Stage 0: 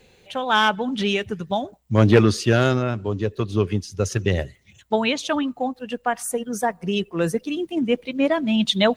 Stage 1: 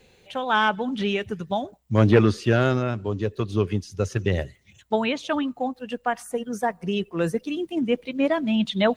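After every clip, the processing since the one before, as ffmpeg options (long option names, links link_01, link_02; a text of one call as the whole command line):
ffmpeg -i in.wav -filter_complex "[0:a]acrossover=split=3000[link_01][link_02];[link_02]acompressor=threshold=-37dB:ratio=4:attack=1:release=60[link_03];[link_01][link_03]amix=inputs=2:normalize=0,volume=-2dB" out.wav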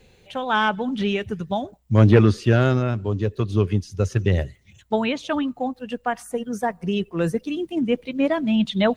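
ffmpeg -i in.wav -af "lowshelf=frequency=160:gain=7.5" out.wav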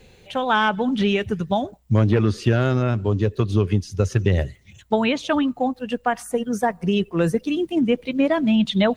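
ffmpeg -i in.wav -af "acompressor=threshold=-18dB:ratio=6,volume=4dB" out.wav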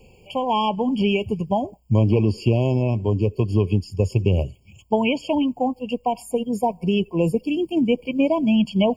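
ffmpeg -i in.wav -af "afftfilt=real='re*eq(mod(floor(b*sr/1024/1100),2),0)':imag='im*eq(mod(floor(b*sr/1024/1100),2),0)':win_size=1024:overlap=0.75" out.wav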